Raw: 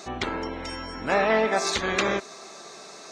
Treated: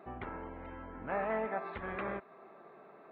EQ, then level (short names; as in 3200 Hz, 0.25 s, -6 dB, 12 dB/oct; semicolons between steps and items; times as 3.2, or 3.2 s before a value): dynamic EQ 340 Hz, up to -6 dB, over -38 dBFS, Q 0.83; Gaussian blur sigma 4.6 samples; -8.5 dB